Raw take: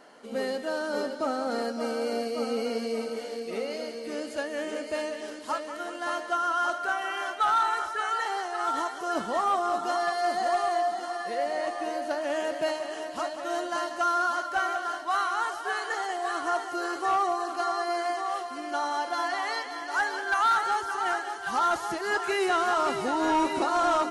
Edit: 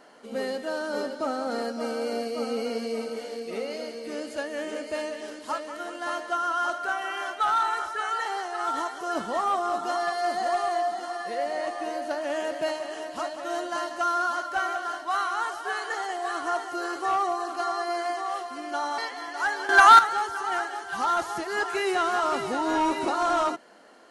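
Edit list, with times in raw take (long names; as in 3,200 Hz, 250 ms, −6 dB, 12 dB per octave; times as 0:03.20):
0:18.98–0:19.52: remove
0:20.23–0:20.53: clip gain +11 dB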